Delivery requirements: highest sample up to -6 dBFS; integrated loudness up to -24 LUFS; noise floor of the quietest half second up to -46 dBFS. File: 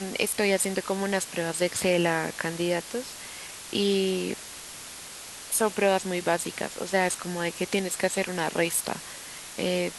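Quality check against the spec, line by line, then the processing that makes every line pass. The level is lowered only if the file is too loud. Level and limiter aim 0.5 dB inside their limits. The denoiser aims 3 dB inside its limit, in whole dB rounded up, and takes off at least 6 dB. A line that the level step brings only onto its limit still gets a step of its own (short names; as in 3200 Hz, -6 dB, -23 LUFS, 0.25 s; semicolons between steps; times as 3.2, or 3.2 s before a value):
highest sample -9.5 dBFS: OK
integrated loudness -27.0 LUFS: OK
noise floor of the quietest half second -42 dBFS: fail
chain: denoiser 7 dB, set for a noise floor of -42 dBFS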